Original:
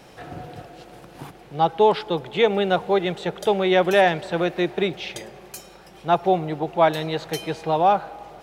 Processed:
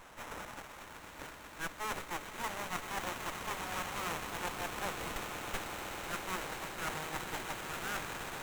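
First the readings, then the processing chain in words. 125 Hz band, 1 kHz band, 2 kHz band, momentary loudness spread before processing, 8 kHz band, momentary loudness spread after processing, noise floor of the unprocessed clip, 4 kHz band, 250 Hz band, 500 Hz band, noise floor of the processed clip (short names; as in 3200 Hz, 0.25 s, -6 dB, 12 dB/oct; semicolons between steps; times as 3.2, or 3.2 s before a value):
-17.0 dB, -17.0 dB, -10.0 dB, 20 LU, 0.0 dB, 9 LU, -47 dBFS, -12.0 dB, -20.0 dB, -24.5 dB, -52 dBFS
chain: half-waves squared off; weighting filter ITU-R 468; reverse; compressor 6:1, threshold -21 dBFS, peak gain reduction 17.5 dB; reverse; FFT band-reject 100–3700 Hz; band shelf 4500 Hz -14 dB; on a send: swelling echo 0.125 s, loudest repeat 8, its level -9 dB; on the sum: running maximum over 9 samples; gain -1 dB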